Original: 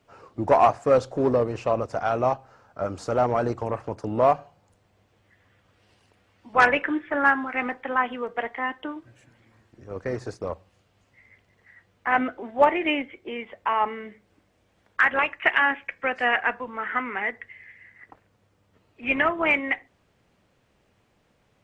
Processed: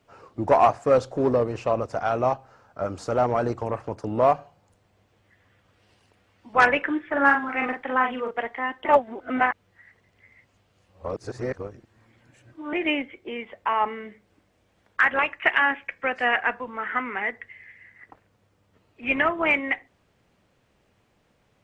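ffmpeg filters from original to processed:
ffmpeg -i in.wav -filter_complex "[0:a]asettb=1/sr,asplit=3[link_01][link_02][link_03];[link_01]atrim=end=7.124[link_04];[link_02]atrim=start=7.12:end=8.31,asetpts=PTS-STARTPTS,afade=type=in:duration=0.004:curve=qsin,afade=type=out:start_time=1.186:duration=0.004:curve=qsin,asplit=2[link_05][link_06];[link_06]adelay=43,volume=-4dB[link_07];[link_05][link_07]amix=inputs=2:normalize=0,atrim=end_sample=52479[link_08];[link_03]atrim=start=8.306[link_09];[link_04][link_08]acrossfade=duration=0.004:curve1=hsin:curve2=qsin[link_10];[link_10][link_09]acrossfade=duration=0.004:curve1=qsin:curve2=hsin,asplit=3[link_11][link_12][link_13];[link_11]atrim=end=8.852[link_14];[link_12]atrim=start=8.848:end=12.732,asetpts=PTS-STARTPTS,areverse[link_15];[link_13]atrim=start=12.728[link_16];[link_14][link_15]acrossfade=duration=0.004:curve1=hsin:curve2=hsin[link_17];[link_17][link_16]acrossfade=duration=0.004:curve1=hsin:curve2=hsin" out.wav

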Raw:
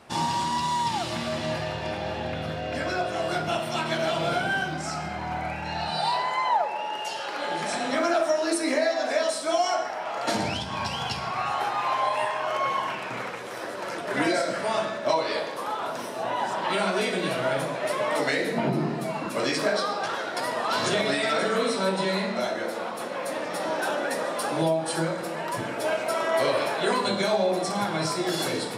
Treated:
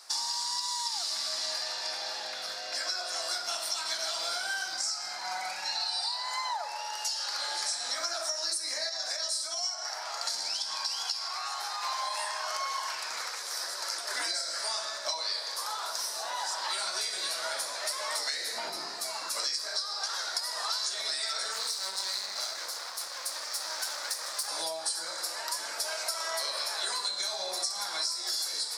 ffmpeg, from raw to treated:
ffmpeg -i in.wav -filter_complex "[0:a]asettb=1/sr,asplit=3[link_01][link_02][link_03];[link_01]atrim=end=5.244[link_04];[link_02]atrim=start=5.24:end=6.06,asetpts=PTS-STARTPTS,afade=type=in:duration=0.004:curve=qsin,afade=type=out:start_time=0.816:duration=0.004:curve=qsin,aecho=1:1:5.4:0.85,atrim=end_sample=36162[link_05];[link_03]atrim=start=6.056[link_06];[link_04][link_05]acrossfade=duration=0.004:curve1=hsin:curve2=qsin[link_07];[link_07][link_06]acrossfade=duration=0.004:curve1=qsin:curve2=hsin,asettb=1/sr,asplit=3[link_08][link_09][link_10];[link_08]atrim=end=8.894[link_11];[link_09]atrim=start=8.89:end=11.83,asetpts=PTS-STARTPTS,afade=type=in:duration=0.004:curve=qsin,afade=type=out:start_time=2.936:duration=0.004:curve=qsin,acompressor=threshold=-27dB:ratio=6:attack=3.2:release=140:knee=1:detection=peak[link_12];[link_10]atrim=start=11.826[link_13];[link_11][link_12]acrossfade=duration=0.004:curve1=hsin:curve2=qsin[link_14];[link_14][link_13]acrossfade=duration=0.004:curve1=qsin:curve2=hsin,asettb=1/sr,asplit=3[link_15][link_16][link_17];[link_15]atrim=end=21.524[link_18];[link_16]atrim=start=21.52:end=24.48,asetpts=PTS-STARTPTS,afade=type=in:duration=0.004:curve=qsin,afade=type=out:start_time=2.956:duration=0.004:curve=qsin,aeval=exprs='max(val(0),0)':channel_layout=same[link_19];[link_17]atrim=start=24.476[link_20];[link_18][link_19]acrossfade=duration=0.004:curve1=hsin:curve2=qsin[link_21];[link_21][link_20]acrossfade=duration=0.004:curve1=qsin:curve2=hsin,highpass=1200,highshelf=frequency=3700:width_type=q:width=3:gain=9,acompressor=threshold=-29dB:ratio=12" out.wav

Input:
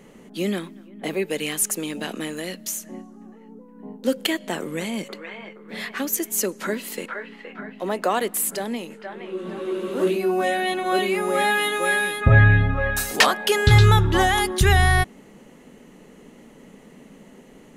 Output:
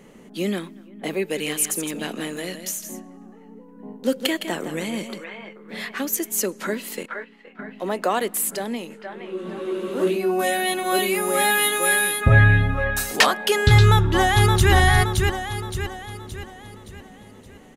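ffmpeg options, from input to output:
ffmpeg -i in.wav -filter_complex "[0:a]asplit=3[link_01][link_02][link_03];[link_01]afade=type=out:start_time=1.36:duration=0.02[link_04];[link_02]aecho=1:1:162:0.355,afade=type=in:start_time=1.36:duration=0.02,afade=type=out:start_time=5.24:duration=0.02[link_05];[link_03]afade=type=in:start_time=5.24:duration=0.02[link_06];[link_04][link_05][link_06]amix=inputs=3:normalize=0,asettb=1/sr,asplit=3[link_07][link_08][link_09];[link_07]atrim=end=7.034[link_10];[link_08]atrim=start=7.03:end=7.6,asetpts=PTS-STARTPTS,afade=type=in:duration=0.004:curve=qsin,afade=type=out:start_time=0.566:duration=0.004:curve=qsin,agate=range=-9dB:threshold=-37dB:ratio=16:release=100:detection=peak[link_11];[link_09]atrim=start=7.596[link_12];[link_10][link_11]acrossfade=duration=0.004:curve1=hsin:curve2=qsin[link_13];[link_13][link_12]acrossfade=duration=0.004:curve1=qsin:curve2=hsin,asettb=1/sr,asplit=3[link_14][link_15][link_16];[link_14]atrim=end=10.394[link_17];[link_15]atrim=start=10.39:end=12.84,asetpts=PTS-STARTPTS,afade=type=in:duration=0.004:curve=qsin,afade=type=out:start_time=2.446:duration=0.004:curve=qsin,aemphasis=mode=production:type=50fm[link_18];[link_16]atrim=start=12.836[link_19];[link_17][link_18]acrossfade=duration=0.004:curve1=hsin:curve2=qsin[link_20];[link_20][link_19]acrossfade=duration=0.004:curve1=qsin:curve2=hsin,asplit=2[link_21][link_22];[link_22]afade=type=in:start_time=13.79:duration=0.01,afade=type=out:start_time=14.72:duration=0.01,aecho=0:1:570|1140|1710|2280|2850|3420:0.668344|0.300755|0.13534|0.0609028|0.0274063|0.0123328[link_23];[link_21][link_23]amix=inputs=2:normalize=0" out.wav

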